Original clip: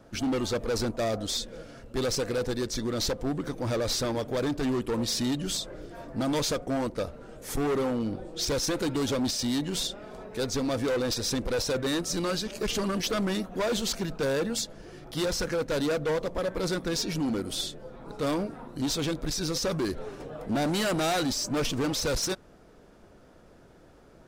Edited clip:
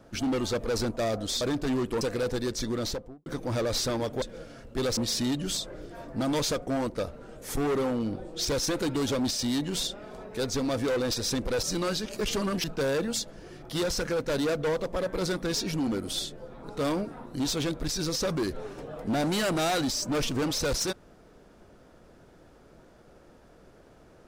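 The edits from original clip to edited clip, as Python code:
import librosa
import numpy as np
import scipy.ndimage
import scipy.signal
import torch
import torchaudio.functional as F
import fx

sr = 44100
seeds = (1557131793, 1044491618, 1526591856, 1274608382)

y = fx.studio_fade_out(x, sr, start_s=2.89, length_s=0.52)
y = fx.edit(y, sr, fx.swap(start_s=1.41, length_s=0.75, other_s=4.37, other_length_s=0.6),
    fx.cut(start_s=11.63, length_s=0.42),
    fx.cut(start_s=13.06, length_s=1.0), tone=tone)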